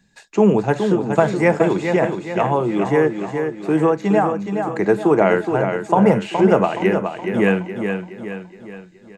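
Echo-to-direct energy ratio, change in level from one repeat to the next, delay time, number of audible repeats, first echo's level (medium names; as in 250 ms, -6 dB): -5.5 dB, -6.5 dB, 420 ms, 5, -6.5 dB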